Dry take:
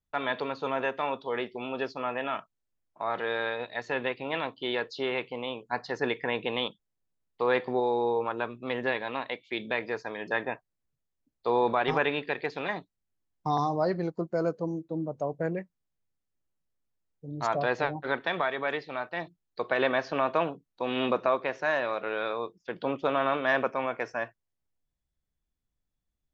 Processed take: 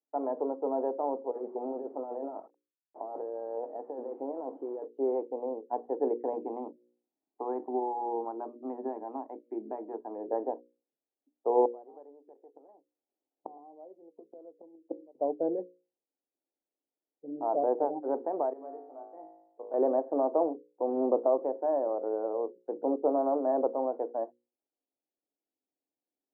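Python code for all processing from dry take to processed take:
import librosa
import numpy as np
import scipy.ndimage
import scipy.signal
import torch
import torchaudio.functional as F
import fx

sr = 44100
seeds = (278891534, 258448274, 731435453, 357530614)

y = fx.chain(x, sr, fx.delta_mod(bps=32000, step_db=-42.0),
    fx.low_shelf(hz=390.0, db=-4.0),
    fx.over_compress(threshold_db=-37.0, ratio=-1.0), at=(1.31, 4.85))
y = fx.chain(y, sr, fx.peak_eq(hz=510.0, db=-14.5, octaves=0.44),
    fx.hum_notches(base_hz=60, count=10),
    fx.band_squash(depth_pct=40), at=(6.33, 10.16))
y = fx.chain(y, sr, fx.peak_eq(hz=630.0, db=5.5, octaves=2.2),
    fx.gate_flip(shuts_db=-23.0, range_db=-29), at=(11.65, 15.15))
y = fx.chain(y, sr, fx.low_shelf(hz=170.0, db=-7.0),
    fx.comb_fb(f0_hz=54.0, decay_s=0.83, harmonics='all', damping=0.0, mix_pct=90), at=(18.53, 19.74))
y = scipy.signal.sosfilt(scipy.signal.ellip(3, 1.0, 70, [280.0, 830.0], 'bandpass', fs=sr, output='sos'), y)
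y = fx.low_shelf(y, sr, hz=450.0, db=6.5)
y = fx.hum_notches(y, sr, base_hz=60, count=9)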